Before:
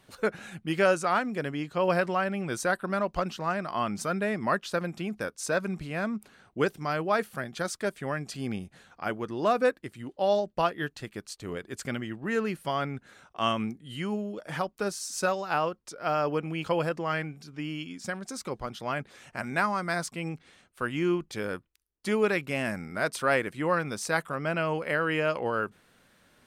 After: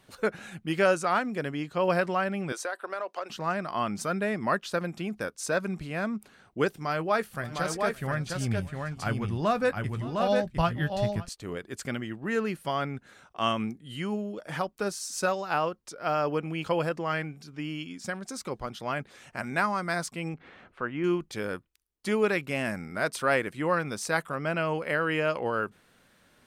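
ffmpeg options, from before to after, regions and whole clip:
-filter_complex "[0:a]asettb=1/sr,asplit=3[a][b][c];[a]atrim=end=2.524[d];[b]atrim=start=2.52:end=3.3,asetpts=PTS-STARTPTS,afade=t=in:d=0.004:c=qsin,afade=t=out:st=0.776:d=0.004:c=qsin,highpass=f=400:w=0.5412,highpass=f=400:w=1.3066,highshelf=f=10k:g=-8,acompressor=threshold=-28dB:ratio=6:attack=3.2:release=140:knee=1:detection=peak[e];[c]atrim=start=3.296[f];[d][e]acrossfade=d=0.004:c1=hsin:c2=qsin[g];[g][f]acrossfade=d=0.004:c1=qsin:c2=hsin,asettb=1/sr,asplit=3[h][i][j];[h]atrim=end=6.734[k];[i]atrim=start=6.73:end=11.29,asetpts=PTS-STARTPTS,afade=t=in:d=0.004:c=qsin,afade=t=out:st=4.556:d=0.004:c=qsin,asubboost=boost=11.5:cutoff=120,asplit=2[l][m];[m]adelay=18,volume=-14dB[n];[l][n]amix=inputs=2:normalize=0,atrim=end_sample=201096,aecho=1:1:565|707:0.106|0.631,atrim=end_sample=201096[o];[j]atrim=start=11.286[p];[k][o]acrossfade=d=0.004:c1=hsin:c2=qsin[q];[q][p]acrossfade=d=0.004:c1=qsin:c2=hsin,asettb=1/sr,asplit=3[r][s][t];[r]atrim=end=20.344[u];[s]atrim=start=20.34:end=21.04,asetpts=PTS-STARTPTS,afade=t=in:d=0.004:c=qsin,afade=t=out:st=0.696:d=0.004:c=qsin,lowshelf=f=180:g=-6,acompressor=mode=upward:threshold=-36dB:ratio=2.5:attack=3.2:release=140:knee=2.83:detection=peak,lowpass=1.9k[v];[t]atrim=start=21.036[w];[u][v]acrossfade=d=0.004:c1=hsin:c2=qsin[x];[x][w]acrossfade=d=0.004:c1=qsin:c2=hsin"

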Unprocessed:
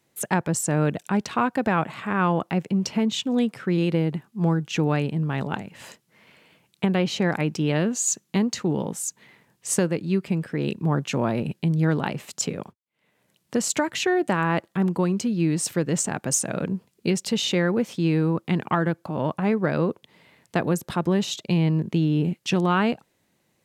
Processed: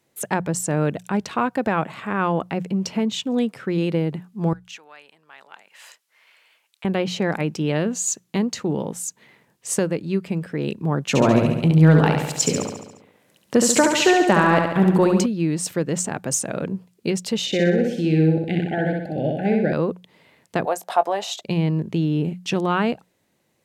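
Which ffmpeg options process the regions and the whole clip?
-filter_complex "[0:a]asettb=1/sr,asplit=3[a][b][c];[a]atrim=end=4.534[d];[b]atrim=start=4.53:end=6.85,asetpts=PTS-STARTPTS,afade=t=in:d=0.004:c=qsin,afade=t=out:st=2.316:d=0.004:c=qsin,acompressor=threshold=-40dB:ratio=2:attack=3.2:release=140:knee=1:detection=peak,highpass=1.1k[e];[c]atrim=start=6.846[f];[d][e]acrossfade=d=0.004:c1=hsin:c2=qsin[g];[g][f]acrossfade=d=0.004:c1=qsin:c2=hsin,asettb=1/sr,asplit=3[h][i][j];[h]atrim=end=11.084[k];[i]atrim=start=11.08:end=15.26,asetpts=PTS-STARTPTS,afade=t=in:d=0.004:c=qsin,afade=t=out:st=4.176:d=0.004:c=qsin,acontrast=45,aecho=1:1:70|140|210|280|350|420|490|560:0.562|0.332|0.196|0.115|0.0681|0.0402|0.0237|0.014,atrim=end_sample=184338[l];[j]atrim=start=15.256[m];[k][l]acrossfade=d=0.004:c1=hsin:c2=qsin[n];[n][m]acrossfade=d=0.004:c1=qsin:c2=hsin,asettb=1/sr,asplit=3[o][p][q];[o]atrim=end=17.464[r];[p]atrim=start=17.46:end=19.73,asetpts=PTS-STARTPTS,afade=t=in:d=0.004:c=qsin,afade=t=out:st=2.266:d=0.004:c=qsin,asuperstop=centerf=1100:order=20:qfactor=1.8,highshelf=f=6.9k:g=-8.5,aecho=1:1:63|126|189|252|315|378|441:0.708|0.354|0.177|0.0885|0.0442|0.0221|0.0111,atrim=end_sample=100107[s];[q]atrim=start=19.726[t];[r][s]acrossfade=d=0.004:c1=hsin:c2=qsin[u];[u][t]acrossfade=d=0.004:c1=qsin:c2=hsin,asettb=1/sr,asplit=3[v][w][x];[v]atrim=end=20.654[y];[w]atrim=start=20.65:end=21.41,asetpts=PTS-STARTPTS,afade=t=in:d=0.004:c=qsin,afade=t=out:st=0.756:d=0.004:c=qsin,highpass=f=710:t=q:w=5.6,asplit=2[z][aa];[aa]adelay=20,volume=-13.5dB[ab];[z][ab]amix=inputs=2:normalize=0,atrim=end_sample=33516[ac];[x]atrim=start=21.406[ad];[y][ac]acrossfade=d=0.004:c1=hsin:c2=qsin[ae];[ae][ad]acrossfade=d=0.004:c1=qsin:c2=hsin,equalizer=f=520:t=o:w=1:g=2.5,bandreject=f=60:t=h:w=6,bandreject=f=120:t=h:w=6,bandreject=f=180:t=h:w=6"

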